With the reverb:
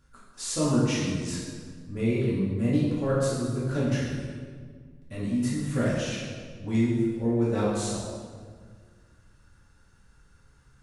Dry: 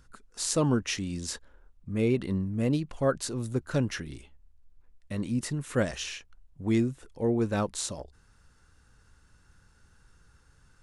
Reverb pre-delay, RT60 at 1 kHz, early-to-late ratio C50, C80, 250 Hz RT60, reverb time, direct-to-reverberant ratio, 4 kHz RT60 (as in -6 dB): 3 ms, 1.6 s, -0.5 dB, 2.0 dB, 2.3 s, 1.8 s, -8.5 dB, 1.2 s